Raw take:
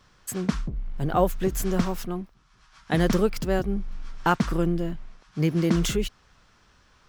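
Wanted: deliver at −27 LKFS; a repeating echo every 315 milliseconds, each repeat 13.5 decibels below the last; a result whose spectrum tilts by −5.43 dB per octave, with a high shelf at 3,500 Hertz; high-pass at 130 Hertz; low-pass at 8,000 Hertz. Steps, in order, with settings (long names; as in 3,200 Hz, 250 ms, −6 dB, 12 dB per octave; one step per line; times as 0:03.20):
high-pass filter 130 Hz
low-pass filter 8,000 Hz
high-shelf EQ 3,500 Hz −8 dB
repeating echo 315 ms, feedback 21%, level −13.5 dB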